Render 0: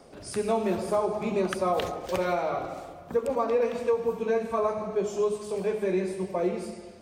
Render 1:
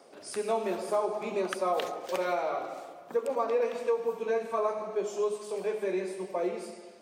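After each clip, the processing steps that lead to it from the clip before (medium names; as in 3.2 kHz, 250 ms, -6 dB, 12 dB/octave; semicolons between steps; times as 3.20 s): high-pass 330 Hz 12 dB/octave; trim -2 dB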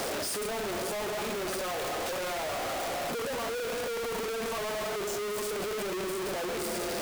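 one-bit comparator; trim -1.5 dB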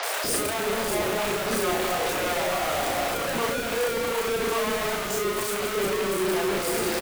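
doubling 35 ms -5 dB; three bands offset in time mids, highs, lows 30/240 ms, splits 590/5300 Hz; trim +7 dB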